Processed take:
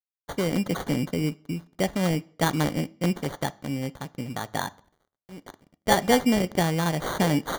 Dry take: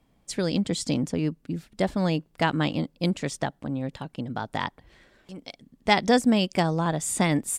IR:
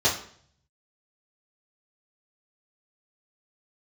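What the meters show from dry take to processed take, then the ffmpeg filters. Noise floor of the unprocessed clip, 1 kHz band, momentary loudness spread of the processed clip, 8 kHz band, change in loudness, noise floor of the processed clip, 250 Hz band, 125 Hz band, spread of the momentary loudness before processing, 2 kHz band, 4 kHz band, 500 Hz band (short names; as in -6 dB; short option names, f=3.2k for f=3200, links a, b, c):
-66 dBFS, 0.0 dB, 13 LU, -2.5 dB, 0.0 dB, under -85 dBFS, -0.5 dB, +0.5 dB, 14 LU, -0.5 dB, -1.0 dB, +0.5 dB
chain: -filter_complex "[0:a]acrusher=samples=17:mix=1:aa=0.000001,aeval=exprs='sgn(val(0))*max(abs(val(0))-0.00266,0)':c=same,asplit=2[a][b];[1:a]atrim=start_sample=2205,afade=t=out:st=0.32:d=0.01,atrim=end_sample=14553[c];[b][c]afir=irnorm=-1:irlink=0,volume=-29.5dB[d];[a][d]amix=inputs=2:normalize=0"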